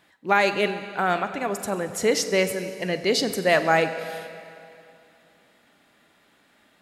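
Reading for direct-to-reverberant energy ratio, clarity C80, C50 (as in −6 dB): 9.5 dB, 11.0 dB, 10.5 dB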